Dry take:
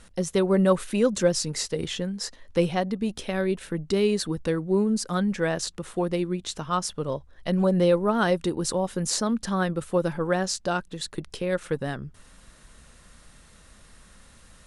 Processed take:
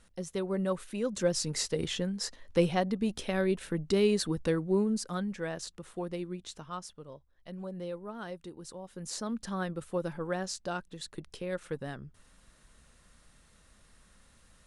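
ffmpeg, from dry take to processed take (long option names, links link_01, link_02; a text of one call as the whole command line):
ffmpeg -i in.wav -af "volume=6.5dB,afade=type=in:start_time=1.03:duration=0.54:silence=0.398107,afade=type=out:start_time=4.53:duration=0.79:silence=0.421697,afade=type=out:start_time=6.41:duration=0.64:silence=0.398107,afade=type=in:start_time=8.84:duration=0.53:silence=0.334965" out.wav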